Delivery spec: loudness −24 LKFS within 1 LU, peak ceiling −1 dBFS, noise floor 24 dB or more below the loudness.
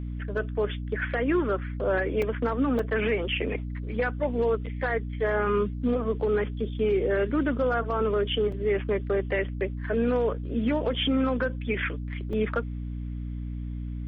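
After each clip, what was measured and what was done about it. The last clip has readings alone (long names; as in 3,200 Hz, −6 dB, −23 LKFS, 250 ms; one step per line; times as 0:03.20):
number of dropouts 4; longest dropout 3.6 ms; mains hum 60 Hz; hum harmonics up to 300 Hz; level of the hum −31 dBFS; integrated loudness −27.5 LKFS; sample peak −15.0 dBFS; target loudness −24.0 LKFS
→ repair the gap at 0:02.22/0:02.79/0:08.52/0:12.33, 3.6 ms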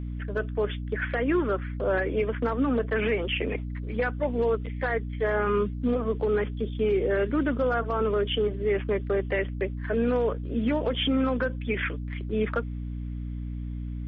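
number of dropouts 0; mains hum 60 Hz; hum harmonics up to 300 Hz; level of the hum −31 dBFS
→ mains-hum notches 60/120/180/240/300 Hz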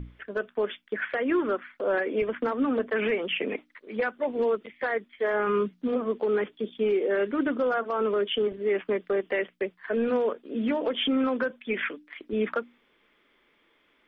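mains hum none found; integrated loudness −28.0 LKFS; sample peak −15.5 dBFS; target loudness −24.0 LKFS
→ level +4 dB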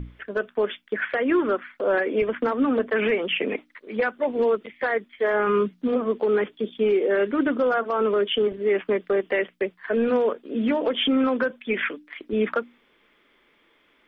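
integrated loudness −24.0 LKFS; sample peak −11.5 dBFS; background noise floor −63 dBFS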